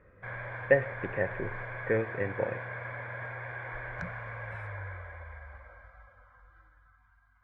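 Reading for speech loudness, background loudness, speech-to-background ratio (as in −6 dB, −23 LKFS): −31.5 LKFS, −40.0 LKFS, 8.5 dB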